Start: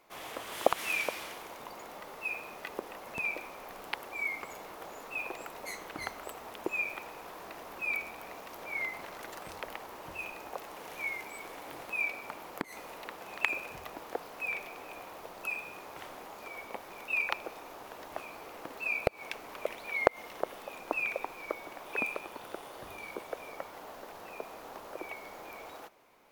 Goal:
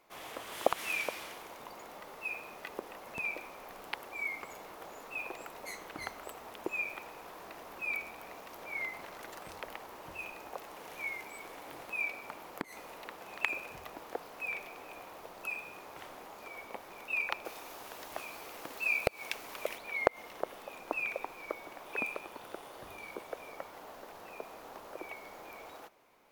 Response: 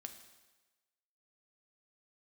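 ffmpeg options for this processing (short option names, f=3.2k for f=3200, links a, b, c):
-filter_complex "[0:a]asettb=1/sr,asplit=3[a][b][c];[a]atrim=end=17.454[d];[b]atrim=start=17.45:end=19.78,asetpts=PTS-STARTPTS,afade=t=in:d=0.004:c=qsin,afade=t=out:st=2.326:d=0.004:c=qsin,highshelf=f=2.4k:g=9[e];[c]atrim=start=19.776[f];[d][e]acrossfade=d=0.004:c1=hsin:c2=qsin[g];[g][f]acrossfade=d=0.004:c1=qsin:c2=hsin,volume=-2.5dB"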